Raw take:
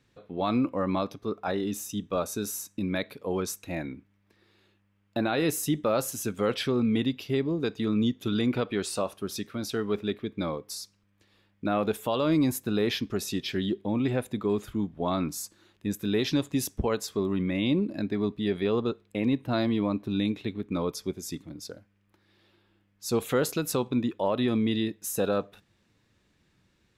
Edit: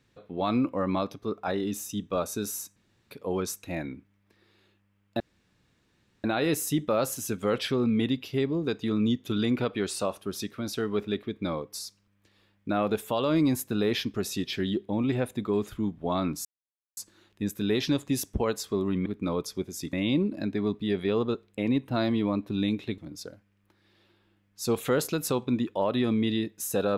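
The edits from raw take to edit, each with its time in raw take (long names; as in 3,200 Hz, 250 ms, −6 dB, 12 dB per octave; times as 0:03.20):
0:02.76–0:03.11: fill with room tone
0:05.20: splice in room tone 1.04 s
0:15.41: splice in silence 0.52 s
0:20.55–0:21.42: move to 0:17.50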